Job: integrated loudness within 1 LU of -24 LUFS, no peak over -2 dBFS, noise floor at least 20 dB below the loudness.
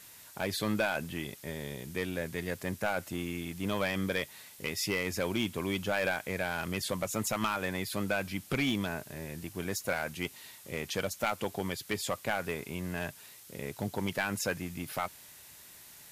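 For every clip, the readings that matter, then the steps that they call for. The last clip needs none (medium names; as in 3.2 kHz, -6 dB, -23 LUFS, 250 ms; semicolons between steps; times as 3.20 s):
clipped samples 0.5%; clipping level -22.5 dBFS; noise floor -53 dBFS; noise floor target -54 dBFS; loudness -34.0 LUFS; peak level -22.5 dBFS; loudness target -24.0 LUFS
-> clip repair -22.5 dBFS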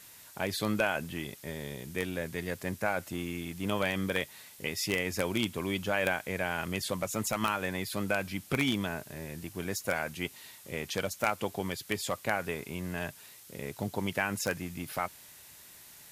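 clipped samples 0.0%; noise floor -53 dBFS; noise floor target -54 dBFS
-> noise print and reduce 6 dB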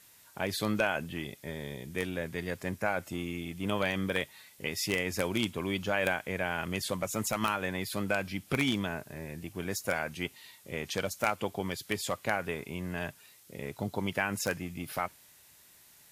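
noise floor -59 dBFS; loudness -33.5 LUFS; peak level -13.5 dBFS; loudness target -24.0 LUFS
-> trim +9.5 dB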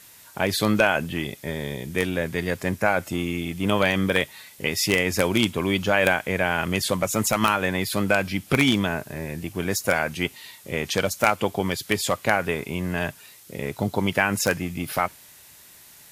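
loudness -24.0 LUFS; peak level -4.0 dBFS; noise floor -49 dBFS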